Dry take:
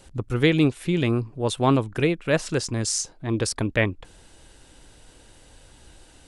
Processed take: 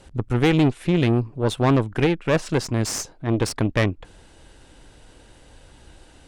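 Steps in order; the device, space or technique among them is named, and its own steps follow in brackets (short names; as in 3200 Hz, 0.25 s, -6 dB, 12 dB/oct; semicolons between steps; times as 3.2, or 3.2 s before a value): tube preamp driven hard (tube stage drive 19 dB, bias 0.7; high shelf 4400 Hz -8 dB); gain +7 dB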